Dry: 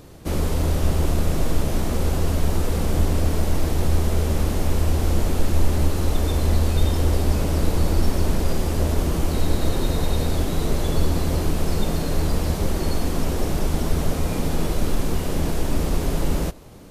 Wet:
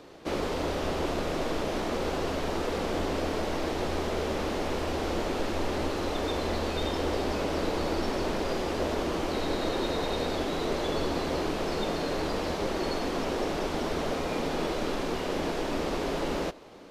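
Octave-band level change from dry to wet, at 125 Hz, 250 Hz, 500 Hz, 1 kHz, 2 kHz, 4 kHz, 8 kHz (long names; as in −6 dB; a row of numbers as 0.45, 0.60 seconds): −16.0, −5.5, −1.0, 0.0, 0.0, −1.5, −10.0 decibels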